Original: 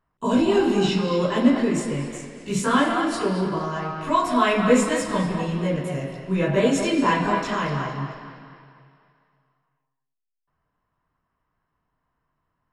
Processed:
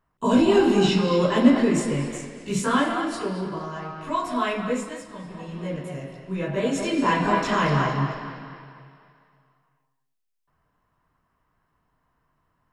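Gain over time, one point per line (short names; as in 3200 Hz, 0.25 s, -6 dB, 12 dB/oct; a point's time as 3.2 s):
2.13 s +1.5 dB
3.4 s -5.5 dB
4.48 s -5.5 dB
5.16 s -16 dB
5.71 s -6 dB
6.56 s -6 dB
7.79 s +5 dB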